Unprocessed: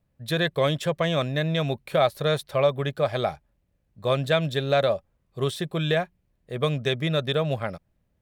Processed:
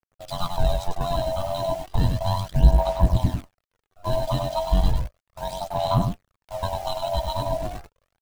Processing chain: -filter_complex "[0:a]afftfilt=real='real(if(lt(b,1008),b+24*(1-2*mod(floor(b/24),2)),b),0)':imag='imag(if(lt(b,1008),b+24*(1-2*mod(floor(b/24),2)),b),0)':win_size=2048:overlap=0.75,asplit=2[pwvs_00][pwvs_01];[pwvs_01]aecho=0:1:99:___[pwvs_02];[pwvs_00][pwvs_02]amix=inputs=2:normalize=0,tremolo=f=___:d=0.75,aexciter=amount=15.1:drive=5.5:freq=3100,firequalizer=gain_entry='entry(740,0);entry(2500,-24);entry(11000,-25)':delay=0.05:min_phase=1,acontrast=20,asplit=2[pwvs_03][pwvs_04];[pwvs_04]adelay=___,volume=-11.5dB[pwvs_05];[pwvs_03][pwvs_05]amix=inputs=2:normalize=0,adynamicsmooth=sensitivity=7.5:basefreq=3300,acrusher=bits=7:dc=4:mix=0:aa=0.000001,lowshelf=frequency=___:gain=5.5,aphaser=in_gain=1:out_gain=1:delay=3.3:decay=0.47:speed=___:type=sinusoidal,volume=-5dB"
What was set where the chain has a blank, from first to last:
0.562, 91, 17, 180, 0.34